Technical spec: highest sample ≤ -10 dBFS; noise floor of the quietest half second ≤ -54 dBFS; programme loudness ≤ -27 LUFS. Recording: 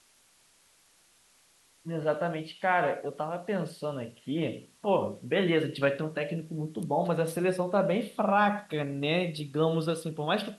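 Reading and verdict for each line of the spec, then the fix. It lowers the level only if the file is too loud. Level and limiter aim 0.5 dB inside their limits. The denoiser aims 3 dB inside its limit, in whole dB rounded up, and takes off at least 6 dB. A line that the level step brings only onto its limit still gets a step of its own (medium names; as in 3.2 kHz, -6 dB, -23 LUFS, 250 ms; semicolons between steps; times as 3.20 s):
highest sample -13.0 dBFS: pass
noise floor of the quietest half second -64 dBFS: pass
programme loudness -30.0 LUFS: pass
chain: none needed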